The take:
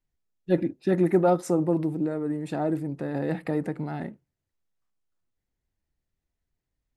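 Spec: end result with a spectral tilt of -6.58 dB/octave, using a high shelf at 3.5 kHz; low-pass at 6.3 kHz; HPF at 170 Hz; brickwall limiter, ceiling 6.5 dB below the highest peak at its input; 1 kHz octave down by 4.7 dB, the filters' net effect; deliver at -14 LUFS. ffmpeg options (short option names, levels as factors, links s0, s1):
-af "highpass=170,lowpass=6300,equalizer=f=1000:t=o:g=-8,highshelf=f=3500:g=3.5,volume=6.31,alimiter=limit=0.891:level=0:latency=1"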